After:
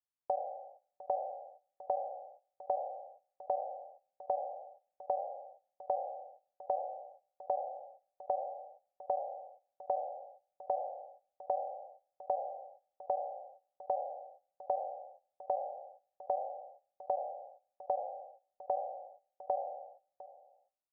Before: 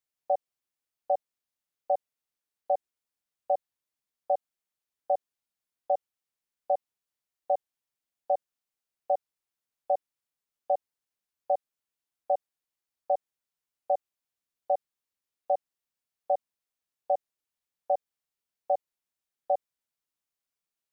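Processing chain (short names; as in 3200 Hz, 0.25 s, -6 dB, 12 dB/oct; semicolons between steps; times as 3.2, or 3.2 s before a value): spectral trails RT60 0.62 s; gate -60 dBFS, range -13 dB; compressor 4:1, threshold -39 dBFS, peak gain reduction 15 dB; synth low-pass 950 Hz, resonance Q 1.6; on a send: echo 0.704 s -17.5 dB; on the sum: gain +1.5 dB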